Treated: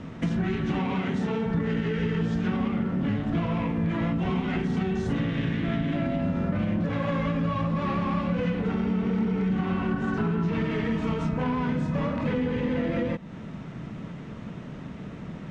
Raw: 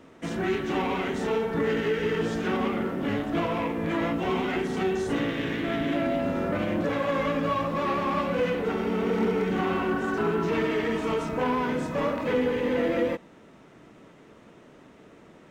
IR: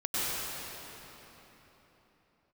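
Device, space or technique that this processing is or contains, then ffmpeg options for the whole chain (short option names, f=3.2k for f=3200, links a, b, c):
jukebox: -filter_complex "[0:a]lowpass=5.7k,lowshelf=f=250:t=q:w=1.5:g=10,acompressor=threshold=-34dB:ratio=4,asettb=1/sr,asplit=3[a][b][c];[a]atrim=end=0.794[d];[b]atrim=start=0.79:end=1.46,asetpts=PTS-STARTPTS,afade=t=in:d=0.004:c=qsin,afade=t=out:st=0.666:d=0.004:c=qsin,highpass=100[e];[c]atrim=start=1.456[f];[d][e]acrossfade=d=0.004:c1=hsin:c2=qsin[g];[g][f]acrossfade=d=0.004:c1=qsin:c2=hsin,volume=8dB"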